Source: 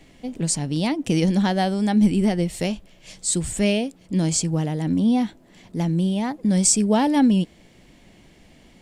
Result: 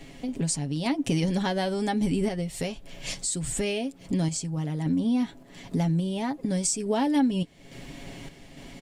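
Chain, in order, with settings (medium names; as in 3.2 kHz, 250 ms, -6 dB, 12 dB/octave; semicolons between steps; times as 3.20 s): comb 7.3 ms, depth 56%; compression 3:1, threshold -36 dBFS, peak gain reduction 18.5 dB; random-step tremolo; trim +9 dB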